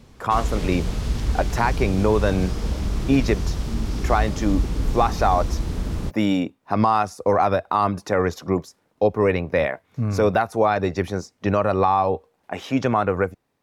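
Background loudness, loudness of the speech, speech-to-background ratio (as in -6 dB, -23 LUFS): -27.0 LUFS, -22.5 LUFS, 4.5 dB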